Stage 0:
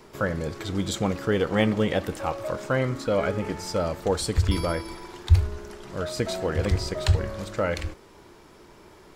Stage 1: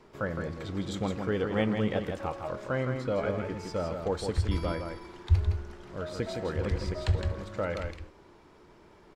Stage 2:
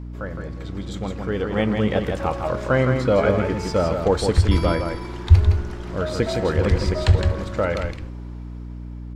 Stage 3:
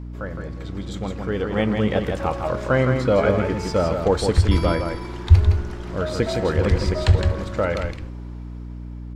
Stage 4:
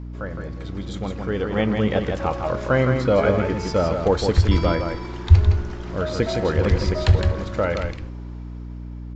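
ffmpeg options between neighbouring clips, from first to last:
-af "aemphasis=mode=reproduction:type=50kf,aecho=1:1:163:0.501,volume=-6dB"
-af "dynaudnorm=f=550:g=7:m=14dB,aeval=exprs='val(0)+0.0251*(sin(2*PI*60*n/s)+sin(2*PI*2*60*n/s)/2+sin(2*PI*3*60*n/s)/3+sin(2*PI*4*60*n/s)/4+sin(2*PI*5*60*n/s)/5)':c=same"
-af anull
-af "aresample=16000,aresample=44100"

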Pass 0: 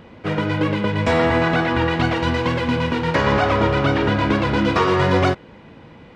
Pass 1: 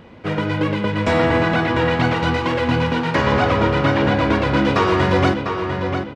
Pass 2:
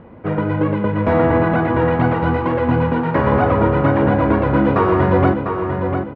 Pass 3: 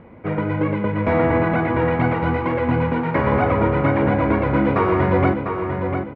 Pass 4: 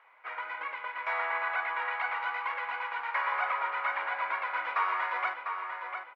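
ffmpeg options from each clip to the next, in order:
-filter_complex "[0:a]asplit=2[a][b];[b]adelay=699,lowpass=f=4k:p=1,volume=-6dB,asplit=2[c][d];[d]adelay=699,lowpass=f=4k:p=1,volume=0.39,asplit=2[e][f];[f]adelay=699,lowpass=f=4k:p=1,volume=0.39,asplit=2[g][h];[h]adelay=699,lowpass=f=4k:p=1,volume=0.39,asplit=2[i][j];[j]adelay=699,lowpass=f=4k:p=1,volume=0.39[k];[a][c][e][g][i][k]amix=inputs=6:normalize=0"
-af "lowpass=1.3k,volume=2.5dB"
-af "equalizer=f=2.2k:t=o:w=0.21:g=10.5,volume=-3dB"
-af "highpass=f=990:w=0.5412,highpass=f=990:w=1.3066,volume=-4dB"

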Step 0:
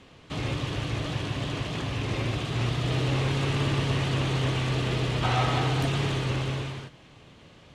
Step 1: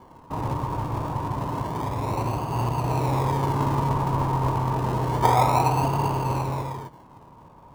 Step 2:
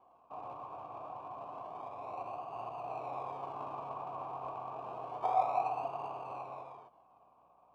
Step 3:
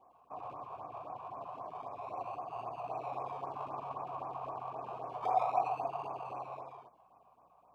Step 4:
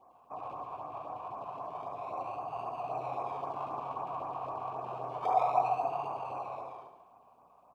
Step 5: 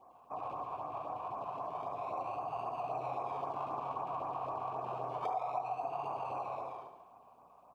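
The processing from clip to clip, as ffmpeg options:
-filter_complex "[0:a]lowpass=f=950:t=q:w=11,asplit=2[a][b];[b]acrusher=samples=34:mix=1:aa=0.000001:lfo=1:lforange=20.4:lforate=0.29,volume=-7.5dB[c];[a][c]amix=inputs=2:normalize=0,volume=-2dB"
-filter_complex "[0:a]aeval=exprs='val(0)+0.00398*(sin(2*PI*60*n/s)+sin(2*PI*2*60*n/s)/2+sin(2*PI*3*60*n/s)/3+sin(2*PI*4*60*n/s)/4+sin(2*PI*5*60*n/s)/5)':c=same,asplit=3[a][b][c];[a]bandpass=f=730:t=q:w=8,volume=0dB[d];[b]bandpass=f=1.09k:t=q:w=8,volume=-6dB[e];[c]bandpass=f=2.44k:t=q:w=8,volume=-9dB[f];[d][e][f]amix=inputs=3:normalize=0,volume=-4dB"
-af "afftfilt=real='re*(1-between(b*sr/1024,240*pow(3800/240,0.5+0.5*sin(2*PI*3.8*pts/sr))/1.41,240*pow(3800/240,0.5+0.5*sin(2*PI*3.8*pts/sr))*1.41))':imag='im*(1-between(b*sr/1024,240*pow(3800/240,0.5+0.5*sin(2*PI*3.8*pts/sr))/1.41,240*pow(3800/240,0.5+0.5*sin(2*PI*3.8*pts/sr))*1.41))':win_size=1024:overlap=0.75,volume=1.5dB"
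-af "aecho=1:1:71|142|213|284|355|426|497:0.376|0.222|0.131|0.0772|0.0455|0.0269|0.0159,volume=2.5dB"
-af "acompressor=threshold=-35dB:ratio=5,volume=1dB"

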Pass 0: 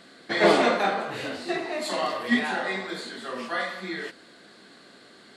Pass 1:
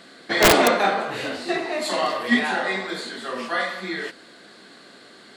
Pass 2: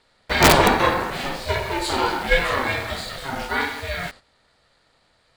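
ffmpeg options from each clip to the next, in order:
-af "lowshelf=f=190:g=-4,aeval=exprs='(mod(3.35*val(0)+1,2)-1)/3.35':c=same,volume=4.5dB"
-filter_complex "[0:a]agate=range=-12dB:threshold=-41dB:ratio=16:detection=peak,asplit=2[a][b];[b]acrusher=bits=5:mix=0:aa=0.000001,volume=-4dB[c];[a][c]amix=inputs=2:normalize=0,aeval=exprs='val(0)*sin(2*PI*270*n/s)':c=same"

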